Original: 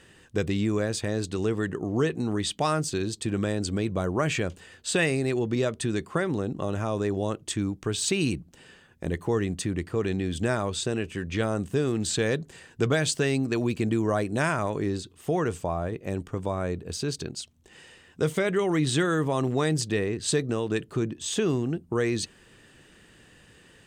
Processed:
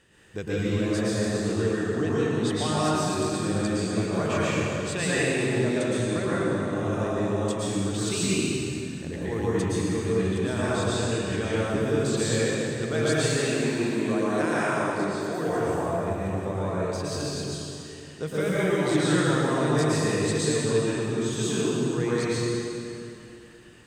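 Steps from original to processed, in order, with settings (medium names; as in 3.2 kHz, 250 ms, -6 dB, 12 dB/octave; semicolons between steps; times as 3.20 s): 13.08–15.39 s: high-pass 190 Hz 12 dB/octave; plate-style reverb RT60 3 s, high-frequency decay 0.75×, pre-delay 100 ms, DRR -9 dB; trim -7.5 dB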